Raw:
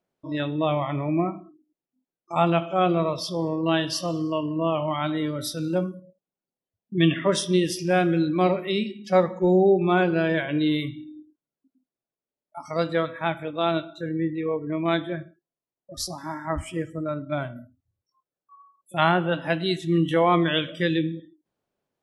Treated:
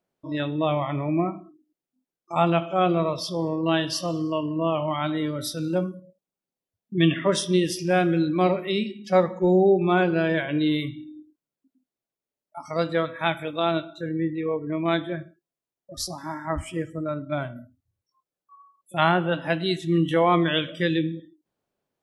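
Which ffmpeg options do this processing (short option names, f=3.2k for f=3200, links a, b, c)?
-filter_complex "[0:a]asettb=1/sr,asplit=3[a][b][c];[a]atrim=end=13.194[d];[b]atrim=start=13.19:end=13.6,asetpts=PTS-STARTPTS,afade=t=in:d=0.004:c=qsin,afade=t=out:st=0.406:d=0.004:c=qsin,highshelf=f=2.6k:g=11[e];[c]atrim=start=13.596[f];[d][e]acrossfade=d=0.004:c1=hsin:c2=qsin[g];[g][f]acrossfade=d=0.004:c1=qsin:c2=hsin"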